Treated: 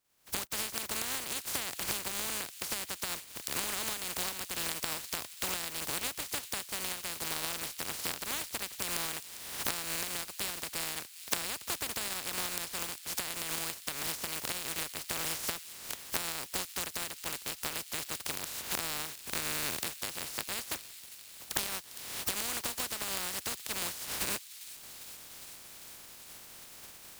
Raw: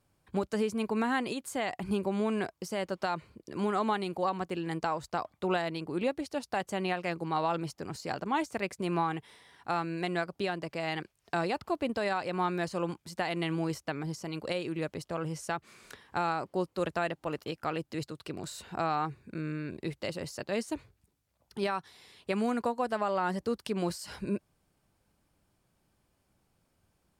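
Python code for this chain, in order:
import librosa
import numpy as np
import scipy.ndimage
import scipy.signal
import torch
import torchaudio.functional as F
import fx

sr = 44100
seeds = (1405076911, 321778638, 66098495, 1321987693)

y = fx.spec_flatten(x, sr, power=0.14)
y = fx.recorder_agc(y, sr, target_db=-14.5, rise_db_per_s=55.0, max_gain_db=30)
y = fx.echo_wet_highpass(y, sr, ms=402, feedback_pct=79, hz=2800.0, wet_db=-14.5)
y = F.gain(torch.from_numpy(y), -8.0).numpy()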